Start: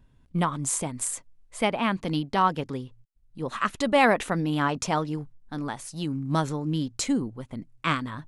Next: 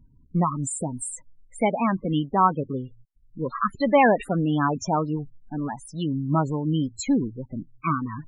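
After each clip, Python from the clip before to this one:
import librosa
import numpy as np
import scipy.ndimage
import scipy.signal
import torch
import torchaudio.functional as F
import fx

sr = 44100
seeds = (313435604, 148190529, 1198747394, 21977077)

y = fx.spec_topn(x, sr, count=16)
y = y * 10.0 ** (3.5 / 20.0)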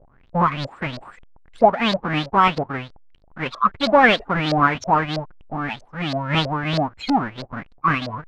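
y = fx.halfwave_hold(x, sr)
y = fx.filter_lfo_lowpass(y, sr, shape='saw_up', hz=3.1, low_hz=550.0, high_hz=4700.0, q=7.0)
y = y * 10.0 ** (-4.0 / 20.0)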